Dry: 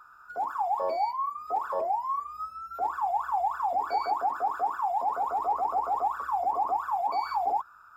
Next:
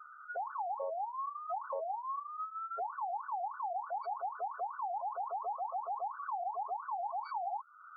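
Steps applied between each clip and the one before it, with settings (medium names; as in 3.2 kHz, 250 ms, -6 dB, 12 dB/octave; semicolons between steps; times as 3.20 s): spectral gate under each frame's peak -10 dB strong; peaking EQ 450 Hz +10 dB 1.1 oct; compression 4:1, threshold -38 dBFS, peak gain reduction 15 dB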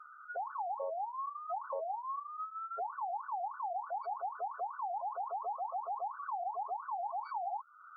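treble shelf 4 kHz -10 dB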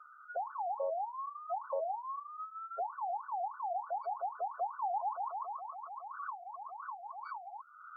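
high-pass sweep 560 Hz -> 1.3 kHz, 4.44–5.77 s; trim -4 dB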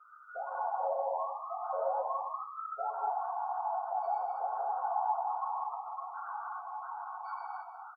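delay 189 ms -12 dB; gated-style reverb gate 340 ms flat, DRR -5 dB; three-phase chorus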